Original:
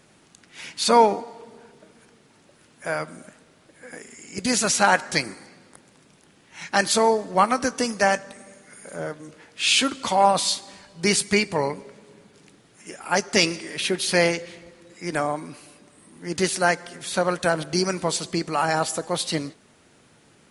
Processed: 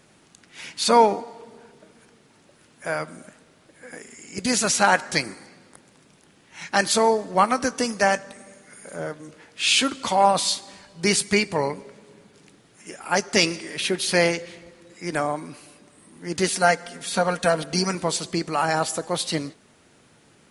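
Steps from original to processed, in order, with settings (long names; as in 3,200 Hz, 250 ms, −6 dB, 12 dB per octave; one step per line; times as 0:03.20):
0:16.47–0:17.95: comb filter 4.3 ms, depth 57%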